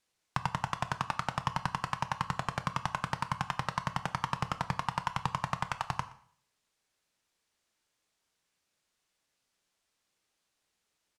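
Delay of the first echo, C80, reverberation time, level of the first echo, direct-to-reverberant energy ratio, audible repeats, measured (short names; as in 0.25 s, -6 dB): 0.121 s, 17.0 dB, 0.55 s, -22.0 dB, 10.0 dB, 1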